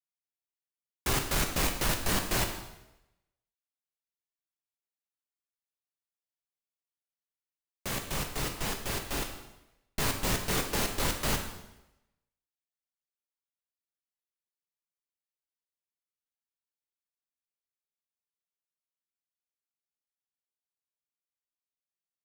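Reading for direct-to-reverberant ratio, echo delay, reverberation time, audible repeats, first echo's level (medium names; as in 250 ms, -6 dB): 3.5 dB, no echo, 0.95 s, no echo, no echo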